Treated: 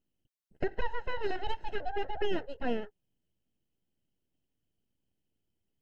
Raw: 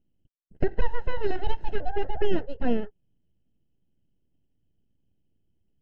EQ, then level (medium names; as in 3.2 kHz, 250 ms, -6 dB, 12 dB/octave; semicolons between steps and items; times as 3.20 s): bass shelf 380 Hz -12 dB; 0.0 dB